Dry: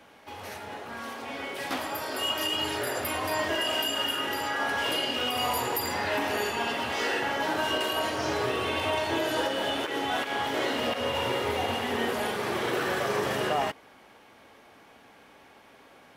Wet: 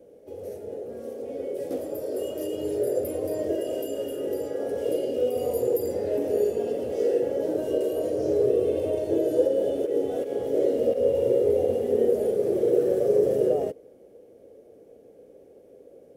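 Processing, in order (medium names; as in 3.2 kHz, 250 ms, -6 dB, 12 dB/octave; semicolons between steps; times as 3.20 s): FFT filter 250 Hz 0 dB, 500 Hz +14 dB, 950 Hz -24 dB, 3.9 kHz -20 dB, 5.9 kHz -12 dB, 9.9 kHz -6 dB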